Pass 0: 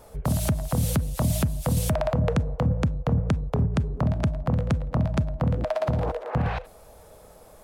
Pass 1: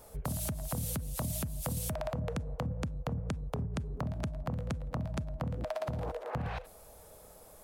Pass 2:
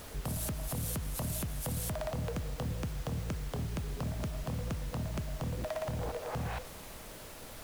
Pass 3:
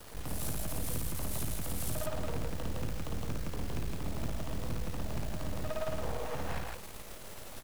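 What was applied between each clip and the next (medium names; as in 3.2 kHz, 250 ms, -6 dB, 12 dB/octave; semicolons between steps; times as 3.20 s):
treble shelf 6.7 kHz +9.5 dB; compression, threshold -26 dBFS, peak gain reduction 8 dB; trim -6 dB
saturation -31 dBFS, distortion -16 dB; added noise pink -50 dBFS; trim +1.5 dB
half-wave rectifier; loudspeakers at several distances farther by 19 m -2 dB, 56 m -1 dB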